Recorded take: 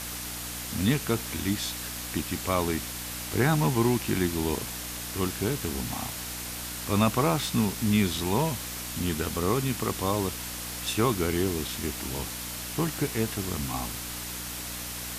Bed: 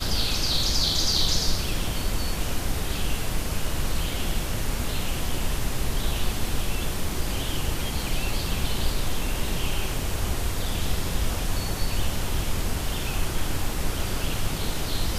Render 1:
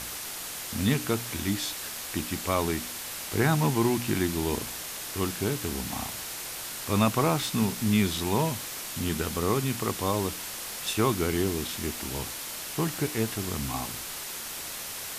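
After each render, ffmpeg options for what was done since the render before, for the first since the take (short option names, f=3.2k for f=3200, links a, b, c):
-af "bandreject=f=60:t=h:w=4,bandreject=f=120:t=h:w=4,bandreject=f=180:t=h:w=4,bandreject=f=240:t=h:w=4,bandreject=f=300:t=h:w=4"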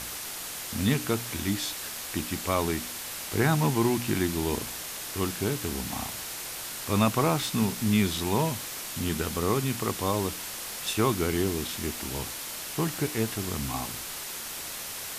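-af anull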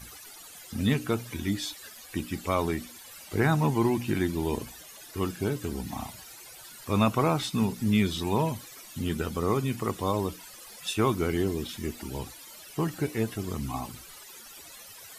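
-af "afftdn=nr=16:nf=-37"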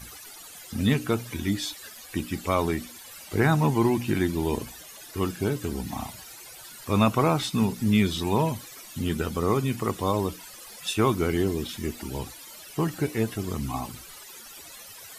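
-af "volume=2.5dB"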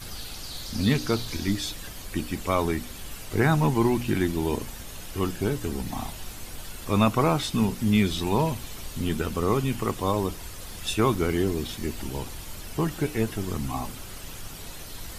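-filter_complex "[1:a]volume=-14dB[a];[0:a][a]amix=inputs=2:normalize=0"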